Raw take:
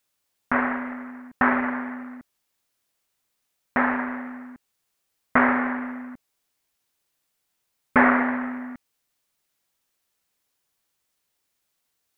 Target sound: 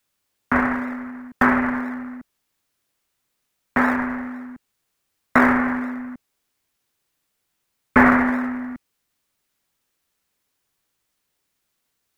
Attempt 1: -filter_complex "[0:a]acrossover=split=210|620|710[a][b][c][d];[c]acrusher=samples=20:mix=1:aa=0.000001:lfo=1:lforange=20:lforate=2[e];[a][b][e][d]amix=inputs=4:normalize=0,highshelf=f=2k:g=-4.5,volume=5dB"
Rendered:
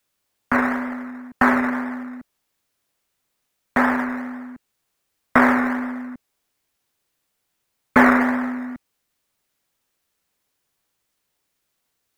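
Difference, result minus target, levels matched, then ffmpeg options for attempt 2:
decimation with a swept rate: distortion -28 dB
-filter_complex "[0:a]acrossover=split=210|620|710[a][b][c][d];[c]acrusher=samples=56:mix=1:aa=0.000001:lfo=1:lforange=56:lforate=2[e];[a][b][e][d]amix=inputs=4:normalize=0,highshelf=f=2k:g=-4.5,volume=5dB"

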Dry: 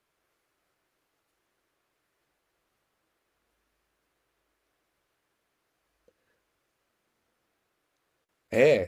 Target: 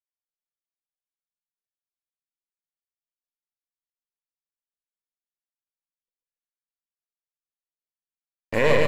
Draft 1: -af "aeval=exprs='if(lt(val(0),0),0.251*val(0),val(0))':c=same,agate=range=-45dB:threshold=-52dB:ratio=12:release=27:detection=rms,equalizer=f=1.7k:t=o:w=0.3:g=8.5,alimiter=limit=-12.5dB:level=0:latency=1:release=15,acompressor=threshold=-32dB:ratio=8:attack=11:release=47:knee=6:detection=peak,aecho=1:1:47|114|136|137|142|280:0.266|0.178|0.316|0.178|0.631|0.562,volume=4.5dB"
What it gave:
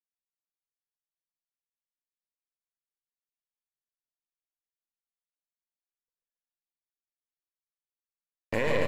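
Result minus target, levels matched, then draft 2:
compressor: peak gain reduction +11 dB
-af "aeval=exprs='if(lt(val(0),0),0.251*val(0),val(0))':c=same,agate=range=-45dB:threshold=-52dB:ratio=12:release=27:detection=rms,equalizer=f=1.7k:t=o:w=0.3:g=8.5,alimiter=limit=-12.5dB:level=0:latency=1:release=15,aecho=1:1:47|114|136|137|142|280:0.266|0.178|0.316|0.178|0.631|0.562,volume=4.5dB"

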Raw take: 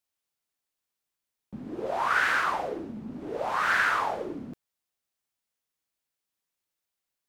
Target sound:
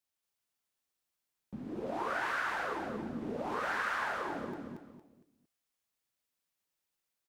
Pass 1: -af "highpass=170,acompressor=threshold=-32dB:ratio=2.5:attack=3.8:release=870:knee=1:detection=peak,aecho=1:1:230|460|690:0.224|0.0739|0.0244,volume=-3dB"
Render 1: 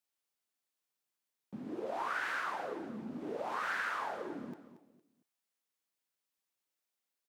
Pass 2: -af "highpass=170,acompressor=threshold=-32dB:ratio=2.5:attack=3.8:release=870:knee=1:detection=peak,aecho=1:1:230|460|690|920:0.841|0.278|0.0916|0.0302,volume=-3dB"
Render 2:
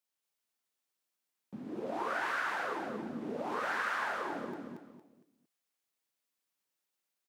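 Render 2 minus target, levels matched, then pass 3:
125 Hz band -4.0 dB
-af "acompressor=threshold=-32dB:ratio=2.5:attack=3.8:release=870:knee=1:detection=peak,aecho=1:1:230|460|690|920:0.841|0.278|0.0916|0.0302,volume=-3dB"

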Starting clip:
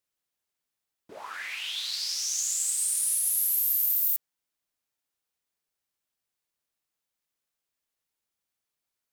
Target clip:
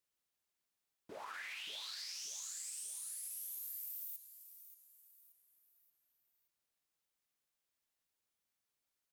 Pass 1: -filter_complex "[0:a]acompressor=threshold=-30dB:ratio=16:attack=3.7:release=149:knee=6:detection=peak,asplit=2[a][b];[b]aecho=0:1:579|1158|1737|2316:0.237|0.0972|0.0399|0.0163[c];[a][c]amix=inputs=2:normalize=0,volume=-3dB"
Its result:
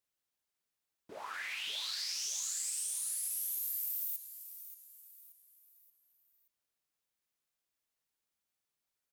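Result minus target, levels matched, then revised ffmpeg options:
compressor: peak gain reduction -8.5 dB
-filter_complex "[0:a]acompressor=threshold=-39dB:ratio=16:attack=3.7:release=149:knee=6:detection=peak,asplit=2[a][b];[b]aecho=0:1:579|1158|1737|2316:0.237|0.0972|0.0399|0.0163[c];[a][c]amix=inputs=2:normalize=0,volume=-3dB"

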